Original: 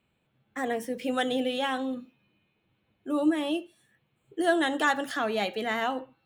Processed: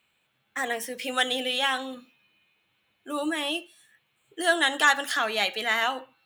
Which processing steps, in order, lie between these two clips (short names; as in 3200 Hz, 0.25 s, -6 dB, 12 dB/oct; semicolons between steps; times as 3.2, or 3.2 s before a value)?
tilt shelf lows -9.5 dB, about 700 Hz